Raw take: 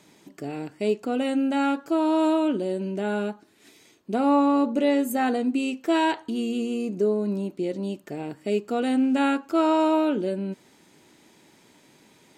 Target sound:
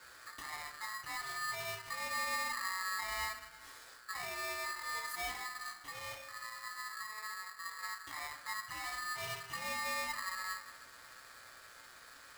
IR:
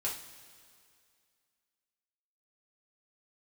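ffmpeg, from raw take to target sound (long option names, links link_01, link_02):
-filter_complex "[0:a]acompressor=threshold=-34dB:ratio=3,alimiter=level_in=7dB:limit=-24dB:level=0:latency=1:release=358,volume=-7dB,aeval=exprs='val(0)+0.00126*(sin(2*PI*60*n/s)+sin(2*PI*2*60*n/s)/2+sin(2*PI*3*60*n/s)/3+sin(2*PI*4*60*n/s)/4+sin(2*PI*5*60*n/s)/5)':channel_layout=same,asettb=1/sr,asplit=3[link_01][link_02][link_03];[link_01]atrim=end=5.394[link_04];[link_02]atrim=start=5.39:end=7.83,asetpts=PTS-STARTPTS,afade=type=in:duration=0.004:curve=qsin,afade=type=out:start_time=2.436:duration=0.004:curve=qsin,flanger=delay=7.2:depth=8.6:regen=-77:speed=1.8:shape=triangular[link_05];[link_03]atrim=start=7.826[link_06];[link_04][link_05]acrossfade=duration=0.004:curve1=hsin:curve2=qsin[link_07];[link_07][link_06]acrossfade=duration=0.004:curve1=qsin:curve2=hsin[link_08];[1:a]atrim=start_sample=2205[link_09];[link_08][link_09]afir=irnorm=-1:irlink=0,aeval=exprs='val(0)*sgn(sin(2*PI*1500*n/s))':channel_layout=same,volume=-4dB"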